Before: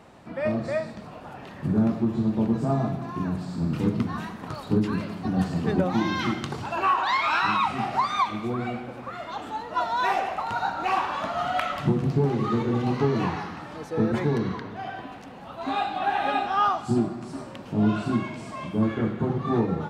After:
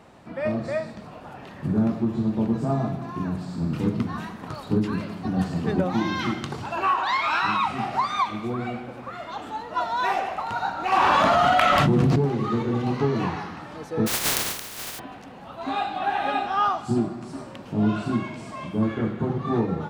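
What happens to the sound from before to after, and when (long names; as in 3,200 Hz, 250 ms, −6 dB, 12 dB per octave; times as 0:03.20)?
0:10.92–0:12.16: envelope flattener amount 100%
0:14.06–0:14.98: compressing power law on the bin magnitudes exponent 0.1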